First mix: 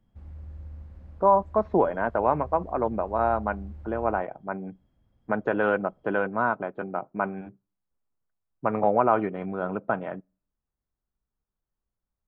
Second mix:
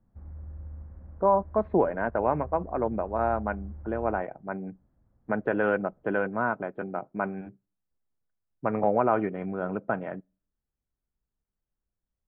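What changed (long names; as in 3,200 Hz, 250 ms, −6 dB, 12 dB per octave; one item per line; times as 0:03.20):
speech: remove low-pass with resonance 1,200 Hz, resonance Q 1.6
master: add low-pass filter 1,700 Hz 24 dB per octave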